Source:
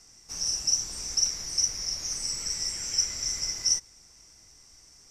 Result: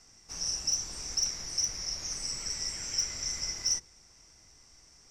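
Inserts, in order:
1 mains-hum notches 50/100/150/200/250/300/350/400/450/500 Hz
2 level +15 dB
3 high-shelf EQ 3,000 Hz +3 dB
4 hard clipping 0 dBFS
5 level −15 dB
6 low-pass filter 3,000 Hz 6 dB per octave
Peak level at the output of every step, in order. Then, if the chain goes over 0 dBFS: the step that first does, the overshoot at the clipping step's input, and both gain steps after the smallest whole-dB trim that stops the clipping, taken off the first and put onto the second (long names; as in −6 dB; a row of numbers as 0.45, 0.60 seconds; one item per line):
−11.0, +4.0, +6.5, 0.0, −15.0, −19.0 dBFS
step 2, 6.5 dB
step 2 +8 dB, step 5 −8 dB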